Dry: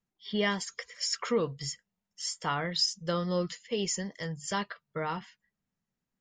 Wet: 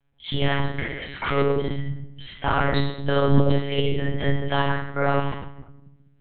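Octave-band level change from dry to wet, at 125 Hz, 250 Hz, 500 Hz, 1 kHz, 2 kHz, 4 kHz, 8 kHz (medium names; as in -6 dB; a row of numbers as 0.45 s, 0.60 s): +15.5 dB, +9.0 dB, +9.0 dB, +9.5 dB, +9.0 dB, +1.5 dB, under -40 dB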